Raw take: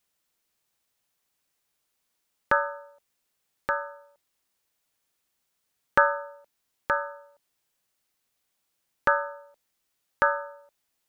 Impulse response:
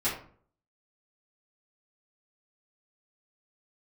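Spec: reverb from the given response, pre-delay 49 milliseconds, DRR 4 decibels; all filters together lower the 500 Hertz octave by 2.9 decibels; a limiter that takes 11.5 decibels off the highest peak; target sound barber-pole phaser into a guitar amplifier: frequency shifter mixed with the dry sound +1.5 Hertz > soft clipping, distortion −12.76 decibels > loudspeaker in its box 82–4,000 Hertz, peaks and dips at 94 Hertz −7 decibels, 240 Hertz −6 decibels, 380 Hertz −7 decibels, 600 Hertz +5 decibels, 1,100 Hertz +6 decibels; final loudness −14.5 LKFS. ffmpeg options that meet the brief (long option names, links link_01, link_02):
-filter_complex "[0:a]equalizer=frequency=500:width_type=o:gain=-7.5,alimiter=limit=-17dB:level=0:latency=1,asplit=2[link_01][link_02];[1:a]atrim=start_sample=2205,adelay=49[link_03];[link_02][link_03]afir=irnorm=-1:irlink=0,volume=-13dB[link_04];[link_01][link_04]amix=inputs=2:normalize=0,asplit=2[link_05][link_06];[link_06]afreqshift=1.5[link_07];[link_05][link_07]amix=inputs=2:normalize=1,asoftclip=threshold=-28dB,highpass=82,equalizer=frequency=94:width_type=q:width=4:gain=-7,equalizer=frequency=240:width_type=q:width=4:gain=-6,equalizer=frequency=380:width_type=q:width=4:gain=-7,equalizer=frequency=600:width_type=q:width=4:gain=5,equalizer=frequency=1100:width_type=q:width=4:gain=6,lowpass=frequency=4000:width=0.5412,lowpass=frequency=4000:width=1.3066,volume=22dB"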